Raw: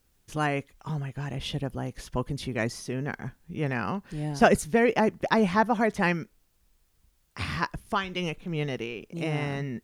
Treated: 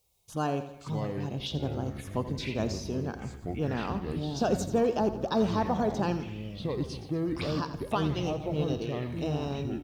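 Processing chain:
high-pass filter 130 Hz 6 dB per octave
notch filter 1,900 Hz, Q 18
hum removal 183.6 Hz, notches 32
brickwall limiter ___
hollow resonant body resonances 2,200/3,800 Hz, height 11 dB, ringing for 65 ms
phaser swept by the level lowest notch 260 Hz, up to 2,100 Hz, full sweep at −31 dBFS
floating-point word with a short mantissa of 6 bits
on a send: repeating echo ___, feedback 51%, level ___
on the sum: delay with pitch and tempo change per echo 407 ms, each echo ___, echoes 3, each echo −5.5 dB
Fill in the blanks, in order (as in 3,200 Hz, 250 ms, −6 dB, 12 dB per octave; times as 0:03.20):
−16.5 dBFS, 84 ms, −12.5 dB, −6 semitones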